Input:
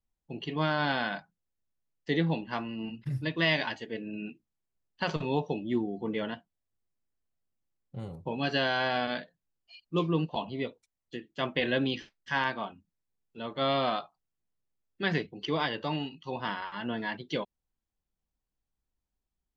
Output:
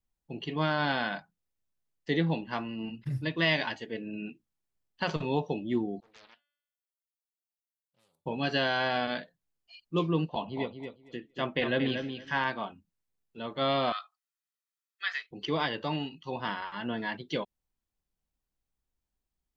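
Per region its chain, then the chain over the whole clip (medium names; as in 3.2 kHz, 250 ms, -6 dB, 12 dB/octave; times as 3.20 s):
6.00–8.26 s: differentiator + feedback comb 290 Hz, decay 0.9 s, mix 50% + loudspeaker Doppler distortion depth 0.63 ms
10.28–12.48 s: treble shelf 4.7 kHz -7 dB + feedback delay 230 ms, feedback 16%, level -7.5 dB
13.92–15.31 s: Chebyshev high-pass 1.3 kHz, order 3 + band-stop 2.8 kHz, Q 18 + comb 1.6 ms, depth 36%
whole clip: none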